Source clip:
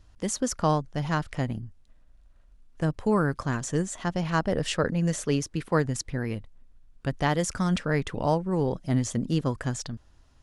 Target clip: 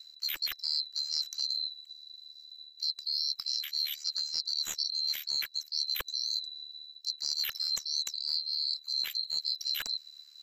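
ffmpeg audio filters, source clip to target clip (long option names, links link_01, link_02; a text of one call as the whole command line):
ffmpeg -i in.wav -filter_complex "[0:a]afftfilt=real='real(if(lt(b,736),b+184*(1-2*mod(floor(b/184),2)),b),0)':imag='imag(if(lt(b,736),b+184*(1-2*mod(floor(b/184),2)),b),0)':win_size=2048:overlap=0.75,acrossover=split=1300[link_01][link_02];[link_01]acrusher=bits=4:dc=4:mix=0:aa=0.000001[link_03];[link_03][link_02]amix=inputs=2:normalize=0,highshelf=frequency=6700:gain=5.5,tremolo=f=74:d=0.75,asoftclip=type=hard:threshold=-9dB,areverse,acompressor=threshold=-36dB:ratio=6,areverse,volume=6dB" out.wav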